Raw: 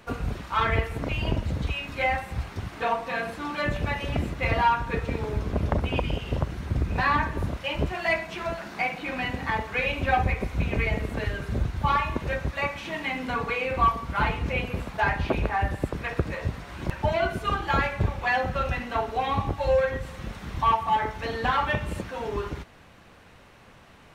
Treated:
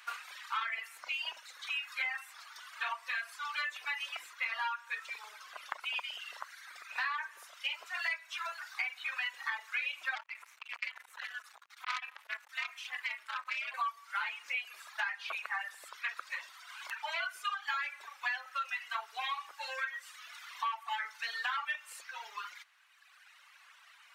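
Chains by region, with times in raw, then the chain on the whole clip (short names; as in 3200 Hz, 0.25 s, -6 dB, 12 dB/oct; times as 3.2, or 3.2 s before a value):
10.15–13.74 HPF 270 Hz + ring modulator 120 Hz + core saturation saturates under 2600 Hz
whole clip: HPF 1200 Hz 24 dB/oct; reverb removal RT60 1.9 s; compressor 6:1, threshold -34 dBFS; gain +1.5 dB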